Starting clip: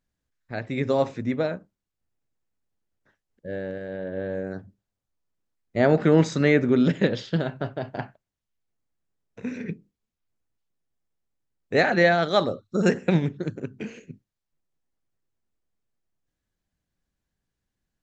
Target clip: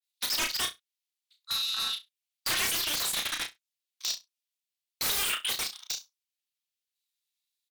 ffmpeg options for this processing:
ffmpeg -i in.wav -filter_complex "[0:a]highpass=frequency=1100:width=0.5412,highpass=frequency=1100:width=1.3066,afwtdn=0.00631,alimiter=limit=-21dB:level=0:latency=1:release=221,aeval=exprs='0.0891*sin(PI/2*10*val(0)/0.0891)':channel_layout=same,asplit=2[link_01][link_02];[link_02]aecho=0:1:77|154|231|308:0.501|0.14|0.0393|0.011[link_03];[link_01][link_03]amix=inputs=2:normalize=0,asetrate=103194,aresample=44100,adynamicequalizer=threshold=0.01:dfrequency=2600:dqfactor=0.7:tfrequency=2600:tqfactor=0.7:attack=5:release=100:ratio=0.375:range=1.5:mode=cutabove:tftype=highshelf,volume=-3.5dB" out.wav

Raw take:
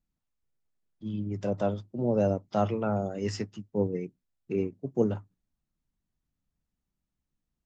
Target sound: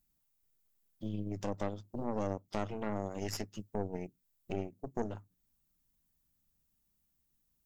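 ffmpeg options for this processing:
ffmpeg -i in.wav -af "acompressor=threshold=-42dB:ratio=2.5,aemphasis=mode=production:type=50fm,aeval=exprs='0.0531*(cos(1*acos(clip(val(0)/0.0531,-1,1)))-cos(1*PI/2))+0.0168*(cos(4*acos(clip(val(0)/0.0531,-1,1)))-cos(4*PI/2))':channel_layout=same,volume=1dB" out.wav

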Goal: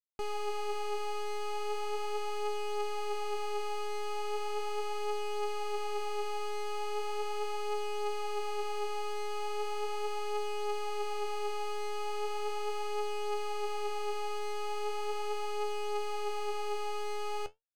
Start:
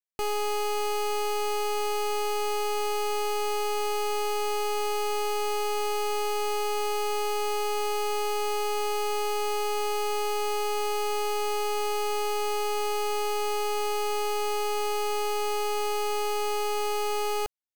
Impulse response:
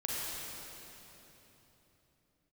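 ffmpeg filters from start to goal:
-af "adynamicsmooth=sensitivity=4.5:basefreq=870,flanger=delay=4.4:depth=9.5:regen=59:speed=0.38:shape=sinusoidal,volume=-3dB"

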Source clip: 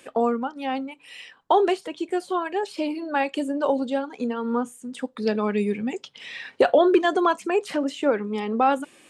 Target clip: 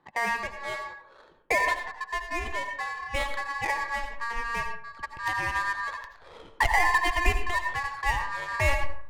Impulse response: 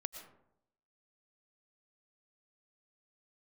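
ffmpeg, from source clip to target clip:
-filter_complex "[0:a]aeval=exprs='val(0)*sin(2*PI*1400*n/s)':channel_layout=same,adynamicsmooth=sensitivity=4.5:basefreq=1000,asubboost=boost=8:cutoff=74[link_01];[1:a]atrim=start_sample=2205,asetrate=61740,aresample=44100[link_02];[link_01][link_02]afir=irnorm=-1:irlink=0,volume=2dB"

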